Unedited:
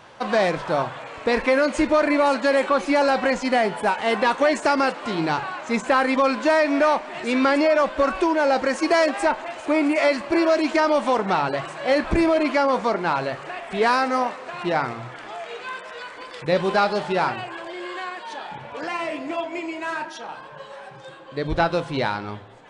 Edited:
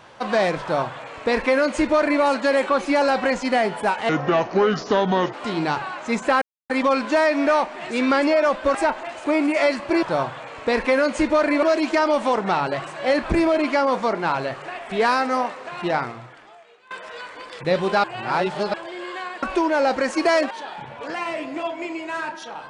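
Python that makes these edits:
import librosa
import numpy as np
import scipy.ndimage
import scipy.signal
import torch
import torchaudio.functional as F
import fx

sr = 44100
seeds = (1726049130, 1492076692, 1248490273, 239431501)

y = fx.edit(x, sr, fx.duplicate(start_s=0.62, length_s=1.6, to_s=10.44),
    fx.speed_span(start_s=4.09, length_s=0.86, speed=0.69),
    fx.insert_silence(at_s=6.03, length_s=0.28),
    fx.move(start_s=8.08, length_s=1.08, to_s=18.24),
    fx.fade_out_to(start_s=14.77, length_s=0.95, curve='qua', floor_db=-20.5),
    fx.reverse_span(start_s=16.85, length_s=0.7), tone=tone)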